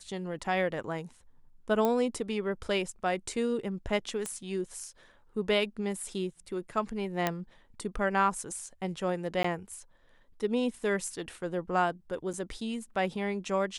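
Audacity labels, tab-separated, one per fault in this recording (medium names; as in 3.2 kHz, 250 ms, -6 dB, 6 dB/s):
1.850000	1.850000	pop -15 dBFS
4.260000	4.260000	pop -19 dBFS
7.270000	7.270000	pop -12 dBFS
9.430000	9.440000	dropout 14 ms
12.330000	12.340000	dropout 6.6 ms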